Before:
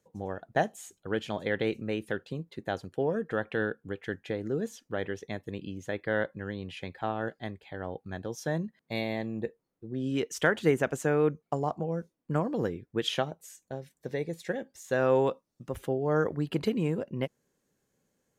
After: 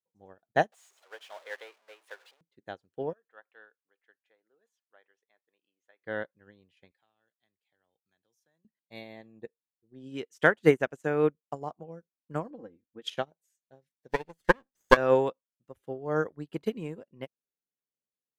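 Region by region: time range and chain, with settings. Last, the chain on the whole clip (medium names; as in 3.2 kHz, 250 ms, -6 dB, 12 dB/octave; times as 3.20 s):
0.72–2.41 s: jump at every zero crossing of -30 dBFS + high-pass 570 Hz 24 dB/octave + treble shelf 7.1 kHz -10.5 dB
3.13–6.02 s: high-pass 850 Hz + treble shelf 2.7 kHz -9.5 dB
6.91–8.65 s: pre-emphasis filter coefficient 0.9 + three bands compressed up and down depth 70%
12.50–13.02 s: low-pass 1.1 kHz 6 dB/octave + comb 3.8 ms, depth 86% + compression 2:1, threshold -32 dBFS
14.09–14.97 s: comb filter that takes the minimum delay 0.63 ms + transient shaper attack +10 dB, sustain +3 dB
whole clip: bass shelf 170 Hz -6 dB; upward expansion 2.5:1, over -43 dBFS; trim +8 dB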